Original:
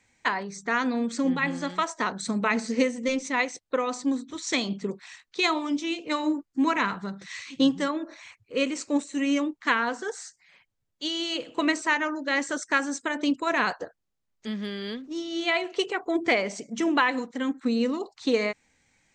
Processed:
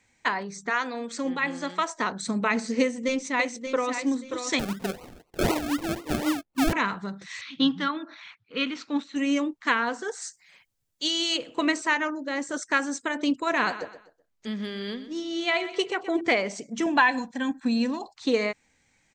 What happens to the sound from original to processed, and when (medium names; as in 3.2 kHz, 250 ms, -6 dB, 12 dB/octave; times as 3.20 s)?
0.69–1.90 s: high-pass 540 Hz -> 190 Hz
2.81–3.91 s: echo throw 580 ms, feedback 25%, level -8 dB
4.59–6.73 s: decimation with a swept rate 36×, swing 60% 4 Hz
7.41–9.16 s: cabinet simulation 160–4700 Hz, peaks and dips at 180 Hz +5 dB, 380 Hz -9 dB, 560 Hz -10 dB, 1.4 kHz +7 dB, 3.5 kHz +7 dB
10.21–11.36 s: treble shelf 5.9 kHz -> 3.7 kHz +11 dB
12.10–12.54 s: peaking EQ 2.5 kHz -7.5 dB 2.8 oct
13.42–16.21 s: feedback delay 125 ms, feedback 34%, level -13.5 dB
16.86–18.13 s: comb 1.2 ms, depth 73%